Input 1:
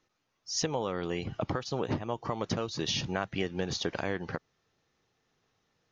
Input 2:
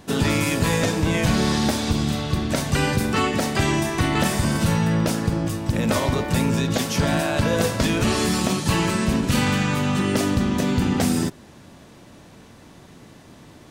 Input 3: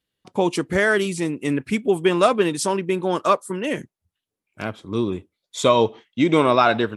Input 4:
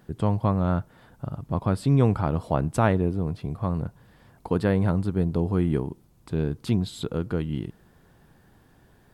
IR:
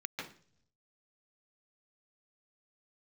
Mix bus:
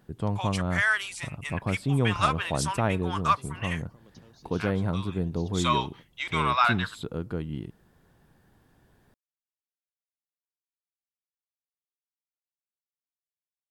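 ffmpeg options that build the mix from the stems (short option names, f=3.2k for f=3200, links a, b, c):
-filter_complex "[0:a]acrossover=split=400|3000[a][b][c];[b]acompressor=threshold=-45dB:ratio=6[d];[a][d][c]amix=inputs=3:normalize=0,adelay=1650,volume=-18.5dB[e];[2:a]highpass=f=1k:w=0.5412,highpass=f=1k:w=1.3066,highshelf=f=4.2k:g=-6,volume=-1.5dB[f];[3:a]volume=-5dB[g];[e][f][g]amix=inputs=3:normalize=0"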